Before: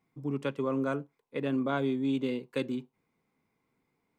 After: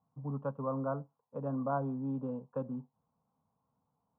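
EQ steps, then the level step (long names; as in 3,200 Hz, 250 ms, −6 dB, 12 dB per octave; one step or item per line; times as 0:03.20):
high-pass filter 50 Hz
low-pass filter 1,200 Hz 24 dB per octave
phaser with its sweep stopped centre 860 Hz, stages 4
+2.0 dB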